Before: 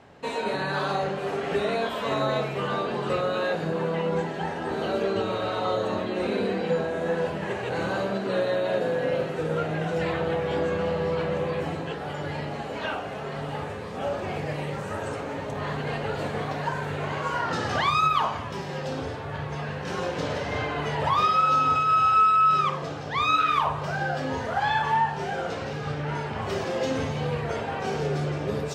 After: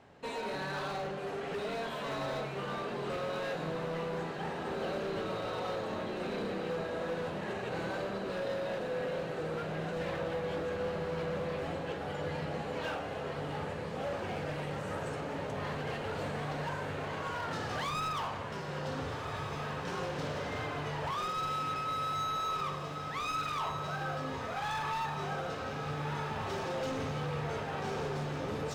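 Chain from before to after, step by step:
speech leveller within 3 dB 2 s
gain into a clipping stage and back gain 24.5 dB
feedback delay with all-pass diffusion 1,487 ms, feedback 66%, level −7.5 dB
level −9 dB

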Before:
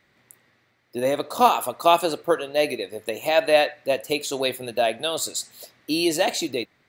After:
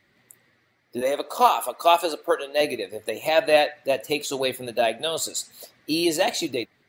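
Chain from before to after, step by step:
spectral magnitudes quantised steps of 15 dB
0:01.01–0:02.61: high-pass filter 360 Hz 12 dB per octave

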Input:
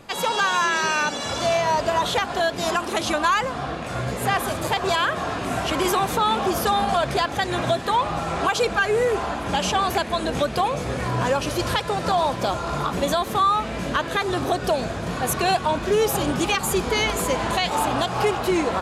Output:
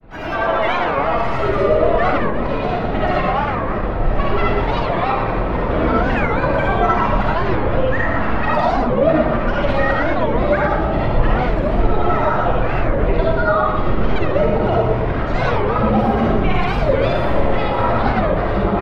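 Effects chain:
sub-octave generator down 2 octaves, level +1 dB
high-shelf EQ 5,600 Hz −8 dB
in parallel at −1 dB: brickwall limiter −20 dBFS, peak gain reduction 10 dB
on the sum: granular cloud, pitch spread up and down by 12 semitones
high-frequency loss of the air 390 metres
on a send: repeating echo 118 ms, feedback 42%, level −6 dB
on the sum: comb and all-pass reverb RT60 0.55 s, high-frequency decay 0.3×, pre-delay 25 ms, DRR −3.5 dB
wow of a warped record 45 rpm, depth 250 cents
level −2 dB

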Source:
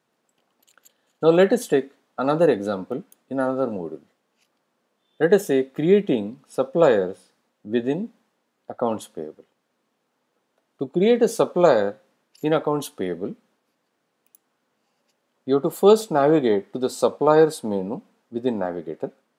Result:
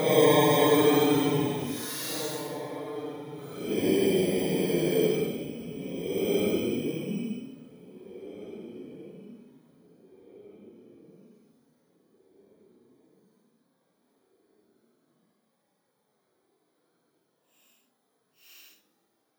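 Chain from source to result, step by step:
samples in bit-reversed order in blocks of 16 samples
high-shelf EQ 8,500 Hz −5.5 dB
on a send: feedback echo with a low-pass in the loop 186 ms, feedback 36%, low-pass 1,800 Hz, level −15.5 dB
on the sum: extreme stretch with random phases 11×, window 0.05 s, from 0:12.66

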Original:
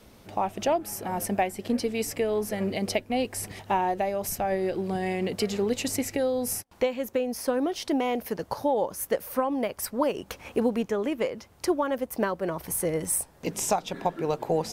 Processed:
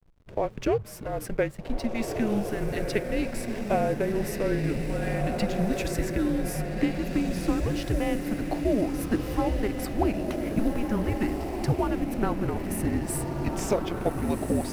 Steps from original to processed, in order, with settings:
bass and treble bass −3 dB, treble −7 dB
frequency shifter −220 Hz
feedback delay with all-pass diffusion 1,639 ms, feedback 52%, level −3.5 dB
slack as between gear wheels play −42 dBFS

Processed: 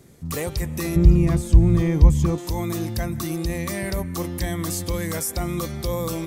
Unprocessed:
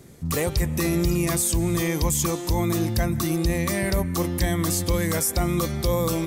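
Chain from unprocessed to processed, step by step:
0:00.96–0:02.38: RIAA equalisation playback
level −3 dB

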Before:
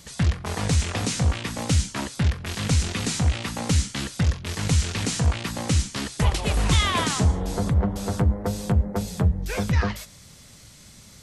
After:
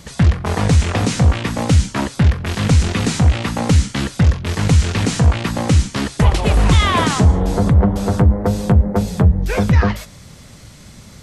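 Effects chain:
high-shelf EQ 2,600 Hz −9 dB
in parallel at −1 dB: brickwall limiter −17.5 dBFS, peak gain reduction 8.5 dB
on the sum: level +5 dB

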